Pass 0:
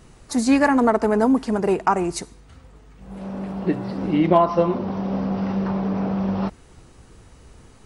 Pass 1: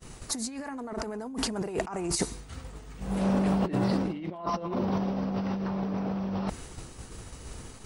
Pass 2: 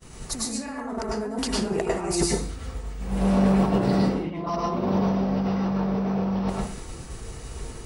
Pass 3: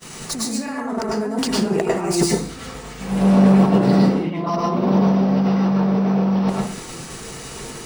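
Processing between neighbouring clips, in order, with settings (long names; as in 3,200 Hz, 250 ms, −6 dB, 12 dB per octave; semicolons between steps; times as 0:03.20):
downward expander −43 dBFS; high-shelf EQ 4,300 Hz +8 dB; compressor whose output falls as the input rises −30 dBFS, ratio −1; level −1.5 dB
convolution reverb RT60 0.45 s, pre-delay 96 ms, DRR −3.5 dB
running median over 3 samples; low shelf with overshoot 110 Hz −11.5 dB, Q 1.5; one half of a high-frequency compander encoder only; level +5 dB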